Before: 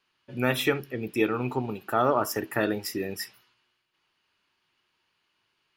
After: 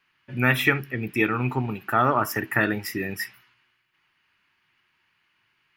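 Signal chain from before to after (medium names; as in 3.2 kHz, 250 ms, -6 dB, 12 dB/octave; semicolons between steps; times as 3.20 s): graphic EQ 125/500/2000/4000/8000 Hz +4/-7/+8/-5/-5 dB; trim +3.5 dB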